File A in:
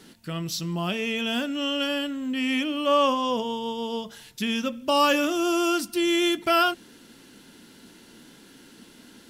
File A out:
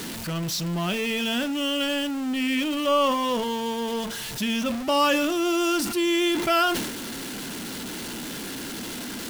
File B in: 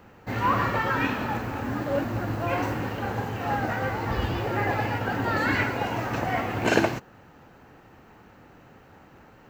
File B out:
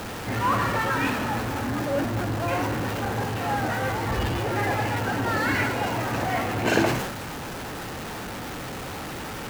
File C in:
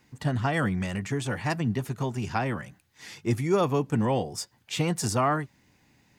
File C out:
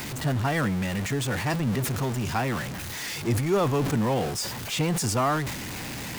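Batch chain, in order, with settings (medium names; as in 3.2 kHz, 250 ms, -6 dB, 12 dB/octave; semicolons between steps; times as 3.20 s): jump at every zero crossing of -27 dBFS; decay stretcher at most 48 dB/s; trim -2 dB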